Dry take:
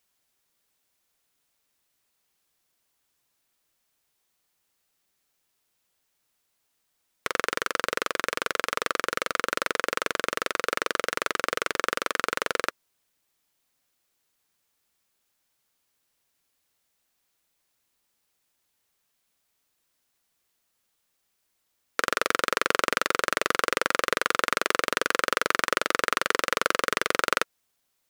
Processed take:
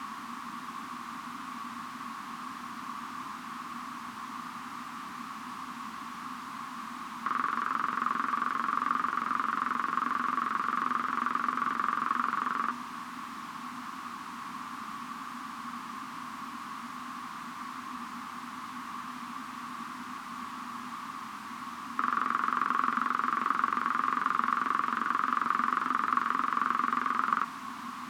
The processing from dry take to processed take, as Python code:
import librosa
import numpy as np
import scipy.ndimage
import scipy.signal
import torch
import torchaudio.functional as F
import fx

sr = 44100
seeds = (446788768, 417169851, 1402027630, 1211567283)

y = x + 0.5 * 10.0 ** (-17.0 / 20.0) * np.sign(x)
y = fx.double_bandpass(y, sr, hz=520.0, octaves=2.2)
y = y * librosa.db_to_amplitude(2.0)